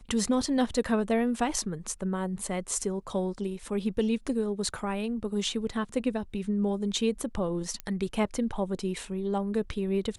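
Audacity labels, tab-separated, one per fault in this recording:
7.800000	7.800000	pop -19 dBFS

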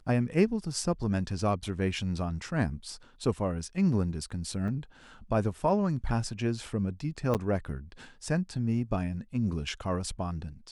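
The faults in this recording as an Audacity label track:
4.680000	4.680000	dropout 3.4 ms
7.340000	7.350000	dropout 8.5 ms

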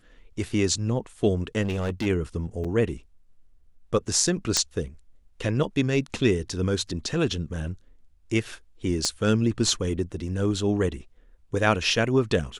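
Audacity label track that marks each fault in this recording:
1.620000	2.070000	clipped -23 dBFS
2.640000	2.650000	dropout 6 ms
4.570000	4.570000	pop -6 dBFS
9.050000	9.050000	pop -11 dBFS

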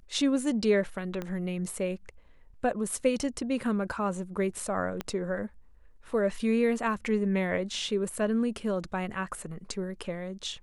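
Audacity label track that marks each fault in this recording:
1.220000	1.220000	pop -21 dBFS
5.010000	5.010000	pop -18 dBFS

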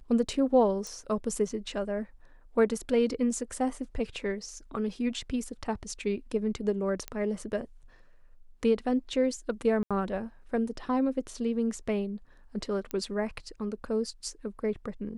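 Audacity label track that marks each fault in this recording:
0.870000	0.870000	pop
7.080000	7.080000	pop -19 dBFS
9.830000	9.910000	dropout 76 ms
12.910000	12.910000	pop -20 dBFS

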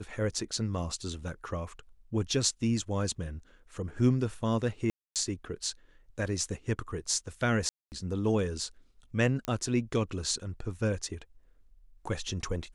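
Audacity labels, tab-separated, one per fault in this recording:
4.900000	5.160000	dropout 258 ms
7.690000	7.920000	dropout 229 ms
9.450000	9.450000	pop -18 dBFS

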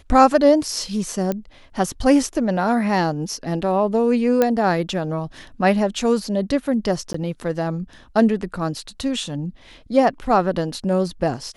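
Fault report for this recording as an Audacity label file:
1.320000	1.320000	pop -11 dBFS
4.420000	4.420000	pop -5 dBFS
7.130000	7.140000	dropout 14 ms

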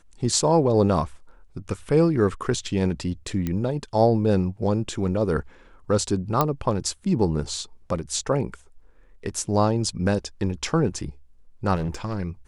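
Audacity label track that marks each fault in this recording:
3.470000	3.470000	pop -14 dBFS
6.410000	6.410000	pop -6 dBFS
11.750000	12.180000	clipped -22.5 dBFS

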